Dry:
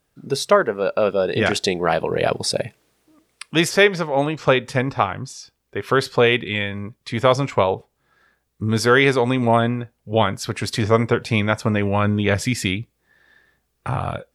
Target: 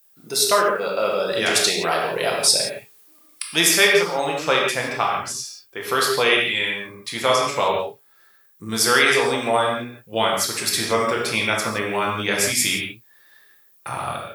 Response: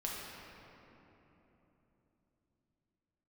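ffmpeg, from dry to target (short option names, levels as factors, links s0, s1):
-filter_complex "[0:a]aemphasis=mode=production:type=riaa[s0];[1:a]atrim=start_sample=2205,afade=t=out:st=0.23:d=0.01,atrim=end_sample=10584[s1];[s0][s1]afir=irnorm=-1:irlink=0,volume=0.891"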